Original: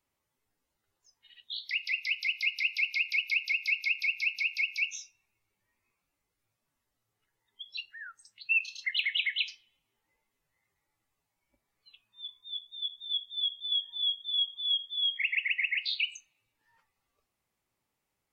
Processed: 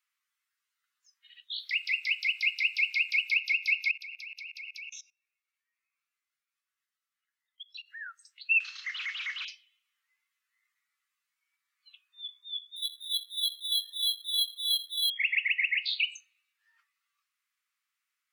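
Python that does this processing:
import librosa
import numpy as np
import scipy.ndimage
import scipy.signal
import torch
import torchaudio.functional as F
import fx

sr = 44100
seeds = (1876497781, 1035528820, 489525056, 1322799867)

y = fx.backlash(x, sr, play_db=-57.0, at=(1.59, 3.32))
y = fx.level_steps(y, sr, step_db=22, at=(3.91, 7.9))
y = fx.delta_mod(y, sr, bps=32000, step_db=-42.0, at=(8.6, 9.45))
y = fx.resample_bad(y, sr, factor=6, down='none', up='hold', at=(12.76, 15.1))
y = scipy.signal.sosfilt(scipy.signal.butter(8, 1200.0, 'highpass', fs=sr, output='sos'), y)
y = fx.high_shelf(y, sr, hz=5200.0, db=-6.0)
y = F.gain(torch.from_numpy(y), 3.0).numpy()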